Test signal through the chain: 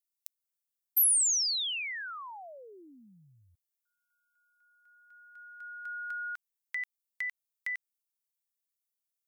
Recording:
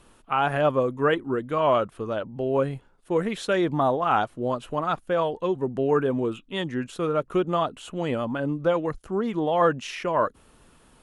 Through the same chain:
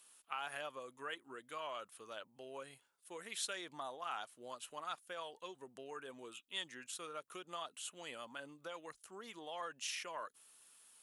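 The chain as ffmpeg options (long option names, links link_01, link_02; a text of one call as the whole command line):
ffmpeg -i in.wav -af "acompressor=threshold=-22dB:ratio=6,aderivative" out.wav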